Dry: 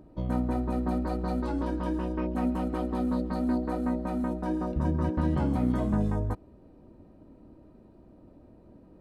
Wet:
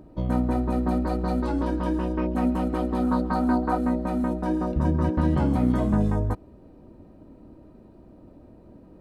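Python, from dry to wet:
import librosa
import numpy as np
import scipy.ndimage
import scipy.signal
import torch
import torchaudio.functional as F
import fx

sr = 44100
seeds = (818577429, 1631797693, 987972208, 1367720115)

y = fx.spec_box(x, sr, start_s=3.03, length_s=0.75, low_hz=650.0, high_hz=1700.0, gain_db=7)
y = y * librosa.db_to_amplitude(4.5)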